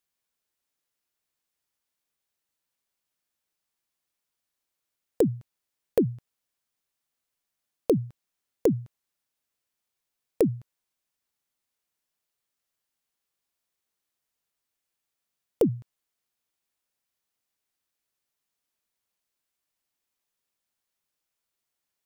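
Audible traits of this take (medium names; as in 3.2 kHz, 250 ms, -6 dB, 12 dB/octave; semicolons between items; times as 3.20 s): noise floor -85 dBFS; spectral tilt -8.0 dB/octave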